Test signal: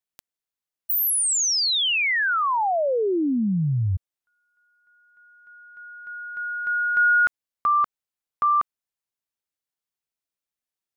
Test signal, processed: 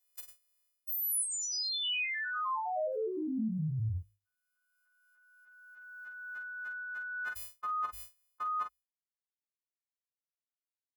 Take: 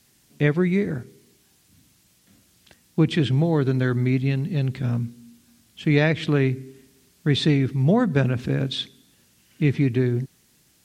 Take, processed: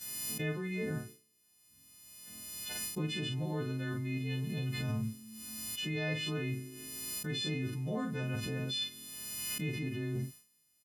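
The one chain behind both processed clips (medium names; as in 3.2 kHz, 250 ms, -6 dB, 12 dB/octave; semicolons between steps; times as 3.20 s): partials quantised in pitch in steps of 3 st; hum notches 50/100 Hz; expander -38 dBFS, range -33 dB; reverse; compression 10:1, threshold -27 dBFS; reverse; early reflections 18 ms -10.5 dB, 45 ms -7 dB; swell ahead of each attack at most 24 dB/s; trim -7.5 dB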